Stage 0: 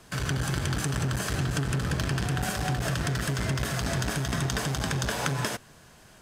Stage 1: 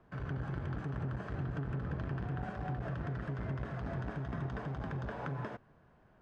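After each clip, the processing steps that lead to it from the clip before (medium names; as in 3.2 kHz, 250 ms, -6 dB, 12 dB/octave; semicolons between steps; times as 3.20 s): low-pass 1.3 kHz 12 dB/octave; trim -9 dB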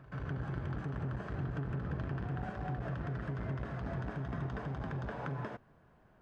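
reverse echo 137 ms -15.5 dB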